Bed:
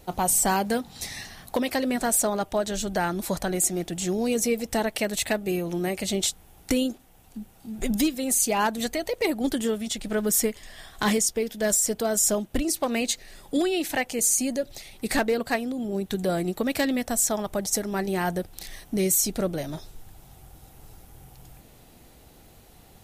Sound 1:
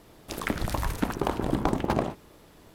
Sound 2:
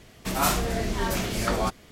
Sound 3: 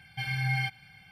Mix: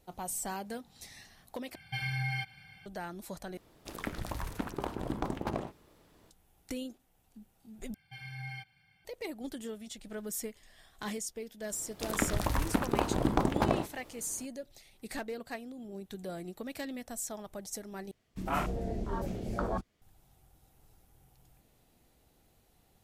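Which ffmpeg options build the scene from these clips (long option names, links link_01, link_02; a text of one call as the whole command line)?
ffmpeg -i bed.wav -i cue0.wav -i cue1.wav -i cue2.wav -filter_complex "[3:a]asplit=2[link_01][link_02];[1:a]asplit=2[link_03][link_04];[0:a]volume=-15dB[link_05];[link_01]acompressor=threshold=-31dB:ratio=4:attack=39:release=332:knee=6:detection=peak[link_06];[2:a]afwtdn=0.0447[link_07];[link_05]asplit=5[link_08][link_09][link_10][link_11][link_12];[link_08]atrim=end=1.754[link_13];[link_06]atrim=end=1.11,asetpts=PTS-STARTPTS,volume=-1dB[link_14];[link_09]atrim=start=2.856:end=3.574[link_15];[link_03]atrim=end=2.74,asetpts=PTS-STARTPTS,volume=-9dB[link_16];[link_10]atrim=start=6.306:end=7.944[link_17];[link_02]atrim=end=1.11,asetpts=PTS-STARTPTS,volume=-13.5dB[link_18];[link_11]atrim=start=9.046:end=18.114[link_19];[link_07]atrim=end=1.91,asetpts=PTS-STARTPTS,volume=-7dB[link_20];[link_12]atrim=start=20.016[link_21];[link_04]atrim=end=2.74,asetpts=PTS-STARTPTS,volume=-2dB,afade=type=in:duration=0.004:curve=hsin,afade=type=out:start_time=2.736:duration=0.004:curve=hsin,adelay=11720[link_22];[link_13][link_14]acrossfade=duration=0.004:curve1=hsin:curve2=hsin[link_23];[link_23][link_15]acrossfade=duration=0.004:curve1=hsin:curve2=hsin[link_24];[link_24][link_16]acrossfade=duration=0.004:curve1=hsin:curve2=hsin[link_25];[link_25][link_17]acrossfade=duration=0.004:curve1=hsin:curve2=hsin[link_26];[link_26][link_18]acrossfade=duration=0.004:curve1=hsin:curve2=hsin[link_27];[link_27][link_19]acrossfade=duration=0.004:curve1=hsin:curve2=hsin[link_28];[link_28][link_20]acrossfade=duration=0.004:curve1=hsin:curve2=hsin[link_29];[link_29][link_21]acrossfade=duration=0.004:curve1=hsin:curve2=hsin[link_30];[link_30][link_22]amix=inputs=2:normalize=0" out.wav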